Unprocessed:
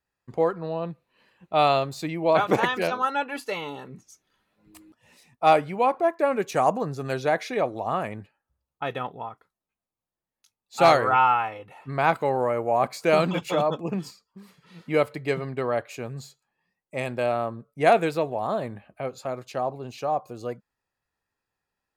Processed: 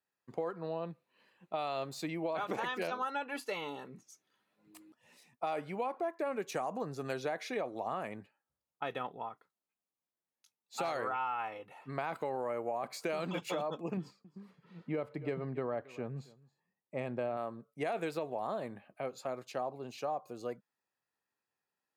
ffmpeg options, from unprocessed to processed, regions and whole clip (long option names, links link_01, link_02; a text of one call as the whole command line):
ffmpeg -i in.wav -filter_complex "[0:a]asettb=1/sr,asplit=3[link_01][link_02][link_03];[link_01]atrim=end=13.974[link_04];[link_02]atrim=start=13.97:end=17.37,asetpts=PTS-STARTPTS,afade=type=in:duration=0.004:curve=qsin,afade=type=out:start_time=3.396:duration=0.004:curve=qsin,lowpass=frequency=1400:poles=1,lowshelf=frequency=190:gain=8.5,aecho=1:1:274:0.075,atrim=end_sample=149940[link_05];[link_03]atrim=start=17.366[link_06];[link_04][link_05]acrossfade=duration=0.004:curve1=hsin:curve2=qsin[link_07];[link_07][link_06]acrossfade=duration=0.004:curve1=qsin:curve2=hsin,alimiter=limit=-15.5dB:level=0:latency=1:release=30,highpass=170,acompressor=threshold=-26dB:ratio=6,volume=-6dB" out.wav